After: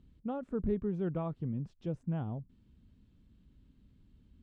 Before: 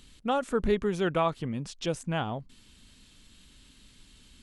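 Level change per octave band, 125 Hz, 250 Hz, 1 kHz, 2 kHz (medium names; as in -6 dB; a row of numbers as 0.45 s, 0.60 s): -1.5 dB, -3.5 dB, -15.0 dB, -20.5 dB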